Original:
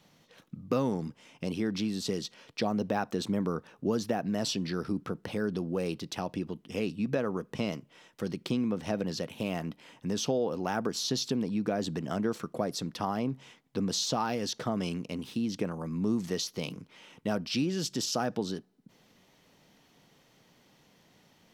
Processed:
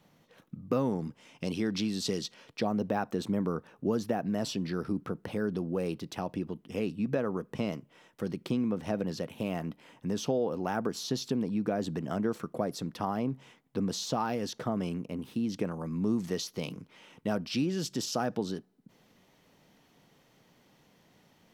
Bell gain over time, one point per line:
bell 4900 Hz 2.1 oct
0.95 s -7 dB
1.44 s +2.5 dB
2.16 s +2.5 dB
2.68 s -6 dB
14.5 s -6 dB
15.16 s -13.5 dB
15.52 s -3.5 dB

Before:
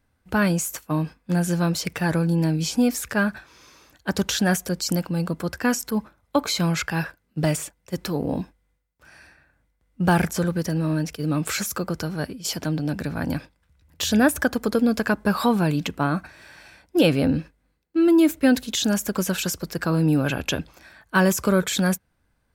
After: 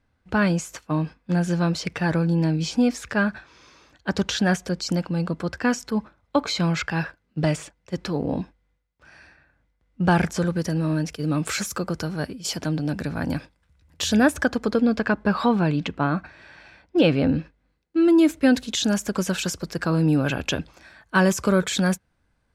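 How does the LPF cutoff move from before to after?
10.06 s 5400 Hz
10.67 s 9600 Hz
14.08 s 9600 Hz
15 s 3900 Hz
17.29 s 3900 Hz
18.09 s 8300 Hz

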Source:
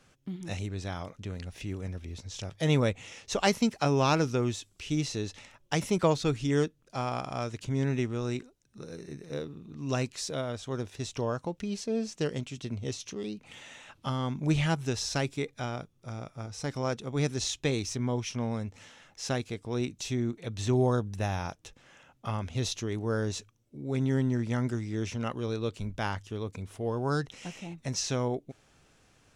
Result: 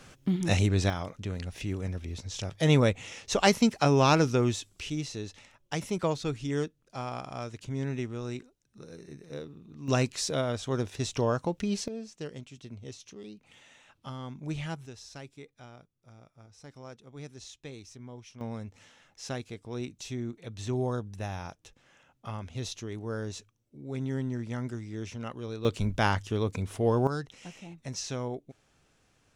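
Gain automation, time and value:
+10.5 dB
from 0.9 s +3 dB
from 4.9 s -4 dB
from 9.88 s +4 dB
from 11.88 s -8.5 dB
from 14.86 s -15 dB
from 18.41 s -5 dB
from 25.65 s +6.5 dB
from 27.07 s -4.5 dB

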